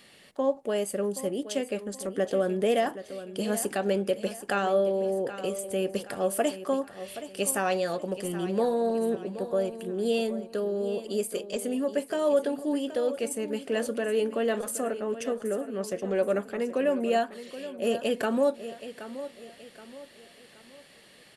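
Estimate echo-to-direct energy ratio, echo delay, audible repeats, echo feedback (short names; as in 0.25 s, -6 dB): -12.5 dB, 0.774 s, 3, 39%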